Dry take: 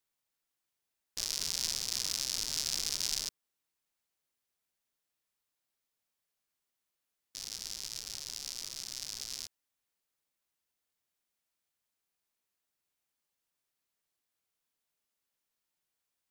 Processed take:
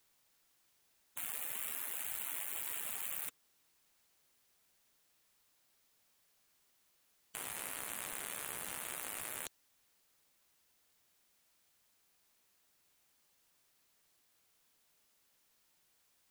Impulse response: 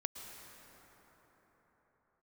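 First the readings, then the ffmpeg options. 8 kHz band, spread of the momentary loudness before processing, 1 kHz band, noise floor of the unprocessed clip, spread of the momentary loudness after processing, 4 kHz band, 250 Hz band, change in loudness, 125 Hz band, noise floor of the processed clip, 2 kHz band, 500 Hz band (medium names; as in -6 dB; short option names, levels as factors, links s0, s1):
-7.0 dB, 10 LU, +5.5 dB, under -85 dBFS, 6 LU, -16.0 dB, -1.5 dB, -5.0 dB, -7.5 dB, -74 dBFS, +2.5 dB, +2.5 dB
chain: -af "aeval=exprs='0.237*(cos(1*acos(clip(val(0)/0.237,-1,1)))-cos(1*PI/2))+0.0119*(cos(2*acos(clip(val(0)/0.237,-1,1)))-cos(2*PI/2))+0.015*(cos(3*acos(clip(val(0)/0.237,-1,1)))-cos(3*PI/2))+0.0841*(cos(5*acos(clip(val(0)/0.237,-1,1)))-cos(5*PI/2))+0.0211*(cos(8*acos(clip(val(0)/0.237,-1,1)))-cos(8*PI/2))':c=same,afftfilt=real='re*lt(hypot(re,im),0.01)':imag='im*lt(hypot(re,im),0.01)':win_size=1024:overlap=0.75,volume=1.58"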